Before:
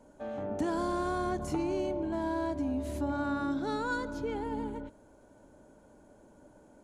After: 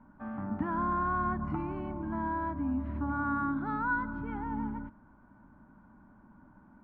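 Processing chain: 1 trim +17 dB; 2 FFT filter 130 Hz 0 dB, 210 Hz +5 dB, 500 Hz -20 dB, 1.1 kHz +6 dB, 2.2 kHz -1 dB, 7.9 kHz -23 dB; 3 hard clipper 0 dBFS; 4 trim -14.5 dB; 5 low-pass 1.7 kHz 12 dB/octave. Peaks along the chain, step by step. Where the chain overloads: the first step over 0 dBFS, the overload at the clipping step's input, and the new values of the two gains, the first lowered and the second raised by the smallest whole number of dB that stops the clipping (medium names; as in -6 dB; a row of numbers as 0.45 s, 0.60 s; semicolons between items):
-4.5 dBFS, -4.5 dBFS, -4.5 dBFS, -19.0 dBFS, -20.0 dBFS; nothing clips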